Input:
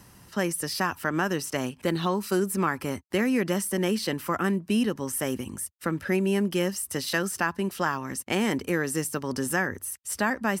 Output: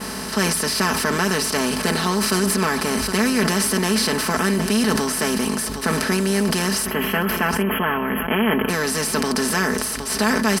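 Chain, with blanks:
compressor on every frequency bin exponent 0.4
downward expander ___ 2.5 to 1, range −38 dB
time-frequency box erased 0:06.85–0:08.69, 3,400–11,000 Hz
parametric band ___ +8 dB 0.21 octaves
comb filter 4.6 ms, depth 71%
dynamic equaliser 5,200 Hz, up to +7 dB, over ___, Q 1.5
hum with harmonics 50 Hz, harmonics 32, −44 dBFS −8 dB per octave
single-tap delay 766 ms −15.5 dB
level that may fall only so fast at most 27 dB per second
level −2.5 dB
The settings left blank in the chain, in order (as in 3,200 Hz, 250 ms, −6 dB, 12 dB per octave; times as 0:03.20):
−31 dBFS, 87 Hz, −44 dBFS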